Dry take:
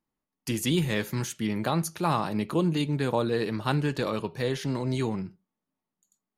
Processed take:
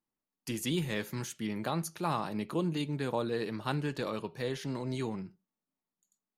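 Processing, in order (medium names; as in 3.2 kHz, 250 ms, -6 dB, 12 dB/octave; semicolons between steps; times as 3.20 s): peaking EQ 63 Hz -8.5 dB 1.2 oct; trim -6 dB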